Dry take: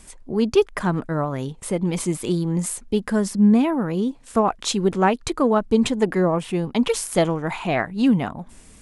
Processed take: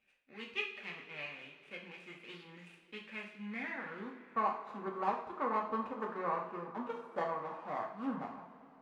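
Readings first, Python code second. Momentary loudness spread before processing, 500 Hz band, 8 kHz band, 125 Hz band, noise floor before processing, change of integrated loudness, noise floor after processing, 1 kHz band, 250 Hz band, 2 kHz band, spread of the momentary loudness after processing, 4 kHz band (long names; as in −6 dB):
7 LU, −20.5 dB, below −40 dB, −29.0 dB, −48 dBFS, −18.0 dB, −62 dBFS, −10.5 dB, −25.0 dB, −11.5 dB, 15 LU, −18.5 dB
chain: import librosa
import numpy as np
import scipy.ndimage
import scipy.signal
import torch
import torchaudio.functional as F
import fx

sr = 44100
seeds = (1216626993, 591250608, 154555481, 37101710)

y = scipy.signal.medfilt(x, 41)
y = fx.filter_sweep_bandpass(y, sr, from_hz=2500.0, to_hz=1100.0, start_s=3.42, end_s=4.13, q=5.2)
y = fx.rev_double_slope(y, sr, seeds[0], early_s=0.49, late_s=3.8, knee_db=-18, drr_db=-1.0)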